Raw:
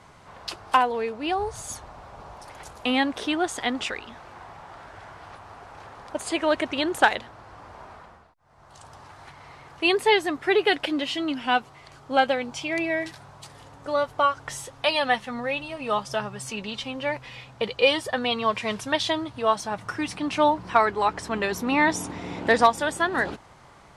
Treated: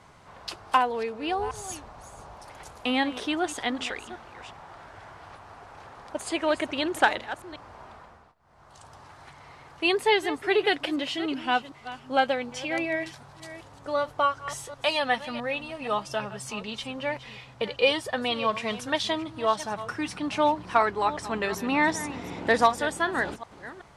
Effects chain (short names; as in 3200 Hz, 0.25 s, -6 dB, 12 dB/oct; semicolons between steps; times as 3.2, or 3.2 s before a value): reverse delay 0.378 s, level -14 dB; gain -2.5 dB